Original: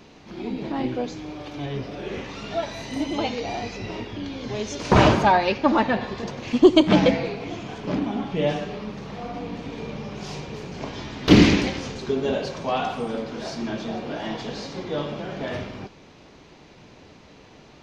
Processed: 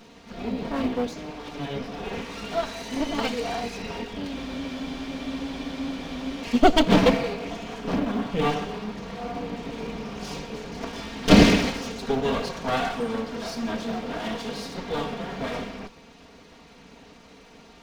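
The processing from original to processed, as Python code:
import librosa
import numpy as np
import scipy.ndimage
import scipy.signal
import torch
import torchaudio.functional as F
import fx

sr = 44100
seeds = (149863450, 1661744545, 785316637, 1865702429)

y = fx.lower_of_two(x, sr, delay_ms=4.3)
y = fx.quant_float(y, sr, bits=6)
y = fx.spec_freeze(y, sr, seeds[0], at_s=4.37, hold_s=2.04)
y = y * librosa.db_to_amplitude(1.0)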